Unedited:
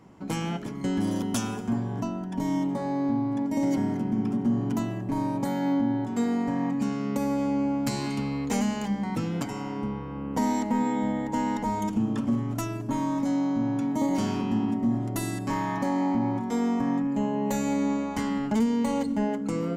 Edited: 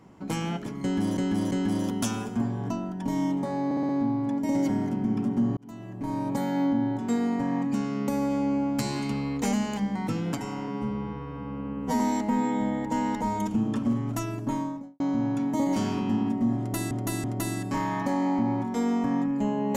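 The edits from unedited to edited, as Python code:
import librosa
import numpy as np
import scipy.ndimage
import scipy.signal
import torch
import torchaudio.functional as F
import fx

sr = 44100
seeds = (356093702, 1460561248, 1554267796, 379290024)

y = fx.studio_fade_out(x, sr, start_s=12.86, length_s=0.56)
y = fx.edit(y, sr, fx.repeat(start_s=0.83, length_s=0.34, count=3),
    fx.stutter(start_s=2.97, slice_s=0.06, count=5),
    fx.fade_in_span(start_s=4.65, length_s=0.75),
    fx.stretch_span(start_s=9.76, length_s=0.66, factor=2.0),
    fx.repeat(start_s=15.0, length_s=0.33, count=3), tone=tone)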